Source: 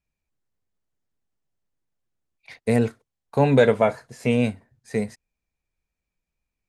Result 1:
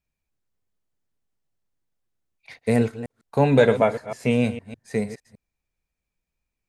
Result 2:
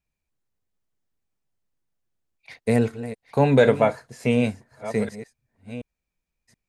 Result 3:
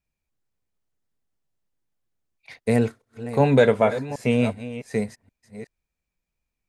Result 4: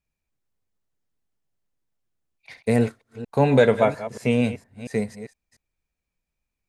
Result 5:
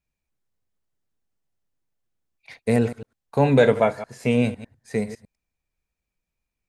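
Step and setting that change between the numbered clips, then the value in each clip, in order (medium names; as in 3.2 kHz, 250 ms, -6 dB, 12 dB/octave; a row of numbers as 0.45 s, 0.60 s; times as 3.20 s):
chunks repeated in reverse, time: 153 ms, 727 ms, 378 ms, 232 ms, 101 ms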